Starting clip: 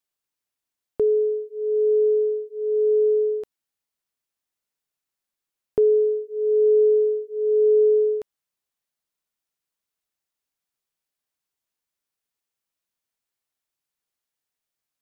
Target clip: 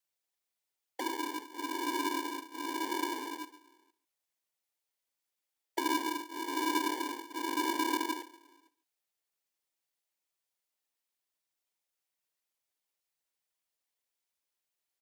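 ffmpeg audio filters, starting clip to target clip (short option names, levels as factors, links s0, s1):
-filter_complex "[0:a]asplit=2[s0][s1];[s1]acompressor=threshold=0.0316:ratio=6,volume=1[s2];[s0][s2]amix=inputs=2:normalize=0,asplit=2[s3][s4];[s4]adelay=460.6,volume=0.0398,highshelf=f=4000:g=-10.4[s5];[s3][s5]amix=inputs=2:normalize=0,afftfilt=real='hypot(re,im)*cos(2*PI*random(0))':imag='hypot(re,im)*sin(2*PI*random(1))':win_size=512:overlap=0.75,asuperstop=centerf=640:order=20:qfactor=0.8,asplit=2[s6][s7];[s7]aecho=0:1:142:0.133[s8];[s6][s8]amix=inputs=2:normalize=0,aeval=exprs='val(0)*sgn(sin(2*PI*650*n/s))':c=same,volume=0.841"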